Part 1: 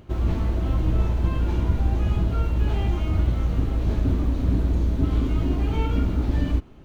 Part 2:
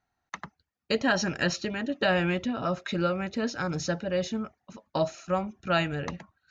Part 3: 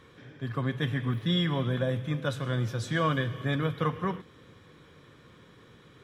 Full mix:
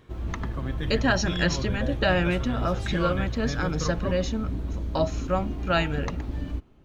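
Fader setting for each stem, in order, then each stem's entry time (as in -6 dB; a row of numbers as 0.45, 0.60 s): -9.0, +1.5, -5.0 dB; 0.00, 0.00, 0.00 s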